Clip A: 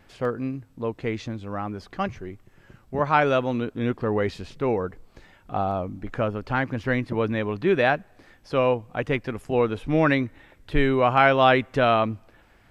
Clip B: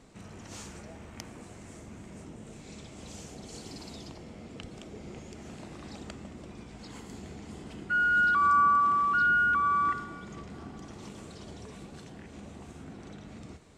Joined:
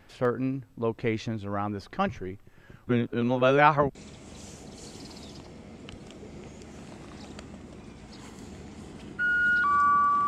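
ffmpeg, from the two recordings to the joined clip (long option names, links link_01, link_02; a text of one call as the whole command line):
ffmpeg -i cue0.wav -i cue1.wav -filter_complex "[0:a]apad=whole_dur=10.27,atrim=end=10.27,asplit=2[link_01][link_02];[link_01]atrim=end=2.872[link_03];[link_02]atrim=start=2.868:end=3.952,asetpts=PTS-STARTPTS,areverse[link_04];[1:a]atrim=start=2.658:end=8.98[link_05];[link_03][link_04]acrossfade=duration=0.004:curve1=hsin:curve2=hsin[link_06];[link_06][link_05]acrossfade=duration=0.004:curve1=hsin:curve2=hsin" out.wav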